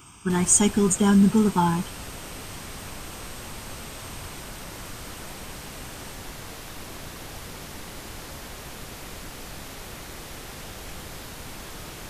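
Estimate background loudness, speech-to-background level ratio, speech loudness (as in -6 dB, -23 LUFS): -38.5 LUFS, 18.5 dB, -20.0 LUFS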